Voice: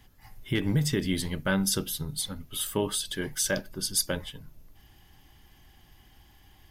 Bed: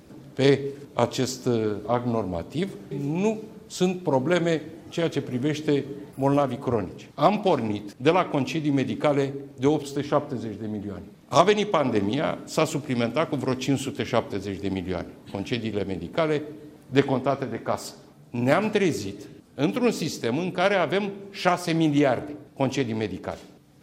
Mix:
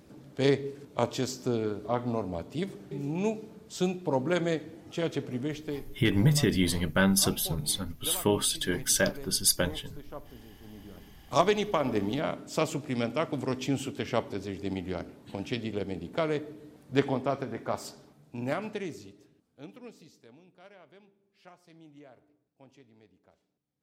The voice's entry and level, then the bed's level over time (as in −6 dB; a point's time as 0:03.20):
5.50 s, +2.5 dB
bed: 0:05.34 −5.5 dB
0:06.13 −20.5 dB
0:10.56 −20.5 dB
0:11.43 −5.5 dB
0:18.00 −5.5 dB
0:20.58 −32 dB